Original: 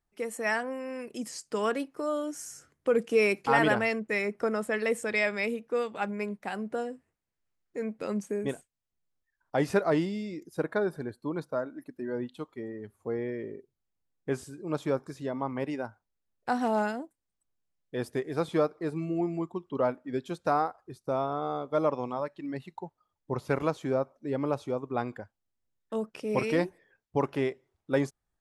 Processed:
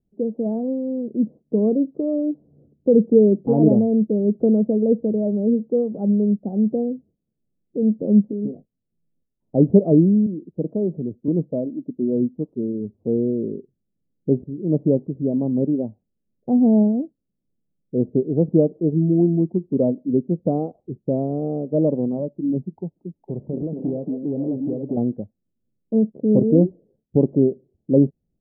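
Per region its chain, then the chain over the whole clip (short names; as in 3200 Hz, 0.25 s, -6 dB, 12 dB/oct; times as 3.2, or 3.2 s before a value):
8.22–9.55 compressor 12:1, threshold -37 dBFS + doubler 19 ms -7.5 dB
10.26–11.28 compressor 1.5:1, threshold -39 dBFS + three-band expander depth 40%
22.73–24.97 compressor 5:1, threshold -31 dBFS + delay with a stepping band-pass 0.229 s, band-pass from 250 Hz, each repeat 1.4 oct, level -1.5 dB + core saturation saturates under 800 Hz
whole clip: steep low-pass 600 Hz 36 dB/oct; bell 200 Hz +13 dB 1.5 oct; gain +5.5 dB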